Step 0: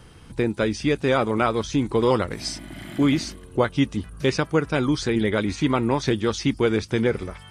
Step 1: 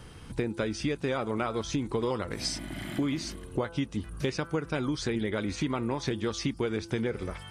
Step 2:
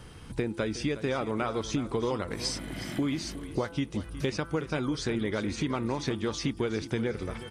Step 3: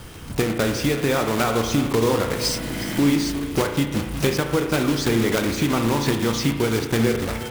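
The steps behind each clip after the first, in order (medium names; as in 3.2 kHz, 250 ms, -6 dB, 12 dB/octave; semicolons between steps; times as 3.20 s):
de-hum 168.3 Hz, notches 9; compression, threshold -27 dBFS, peak gain reduction 12 dB
feedback delay 365 ms, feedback 30%, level -14 dB
block-companded coder 3-bit; on a send at -5 dB: reverberation RT60 1.1 s, pre-delay 35 ms; on the sum: trim +8 dB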